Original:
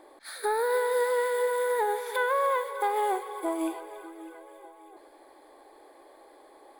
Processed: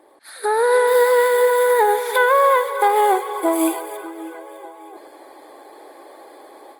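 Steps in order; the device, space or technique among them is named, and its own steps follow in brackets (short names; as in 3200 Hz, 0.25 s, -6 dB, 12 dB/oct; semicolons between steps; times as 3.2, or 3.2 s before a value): 3.53–3.97 high shelf 6400 Hz +11 dB; video call (HPF 160 Hz 12 dB/oct; AGC gain up to 10 dB; gain +1.5 dB; Opus 24 kbps 48000 Hz)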